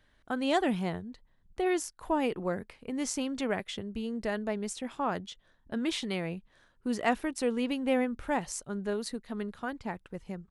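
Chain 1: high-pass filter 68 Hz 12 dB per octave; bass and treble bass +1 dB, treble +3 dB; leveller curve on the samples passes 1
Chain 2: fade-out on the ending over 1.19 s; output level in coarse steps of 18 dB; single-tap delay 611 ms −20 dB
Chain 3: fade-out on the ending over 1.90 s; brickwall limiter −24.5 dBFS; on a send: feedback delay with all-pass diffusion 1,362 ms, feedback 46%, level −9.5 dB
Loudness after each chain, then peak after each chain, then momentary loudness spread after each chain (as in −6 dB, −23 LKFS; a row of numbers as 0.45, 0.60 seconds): −29.5, −39.0, −36.0 LKFS; −13.0, −20.0, −22.0 dBFS; 10, 12, 10 LU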